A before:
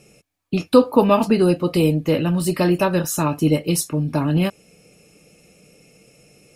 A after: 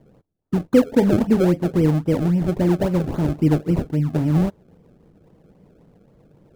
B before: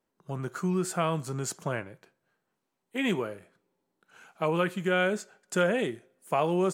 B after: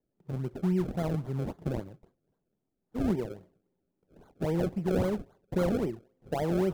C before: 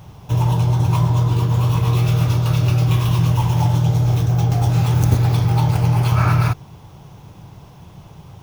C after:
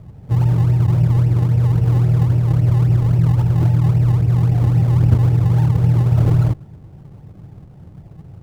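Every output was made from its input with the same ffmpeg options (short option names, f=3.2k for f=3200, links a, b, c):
-af "asuperstop=centerf=1100:order=12:qfactor=3.3,acrusher=samples=32:mix=1:aa=0.000001:lfo=1:lforange=32:lforate=3.7,tiltshelf=f=820:g=9,volume=-6.5dB"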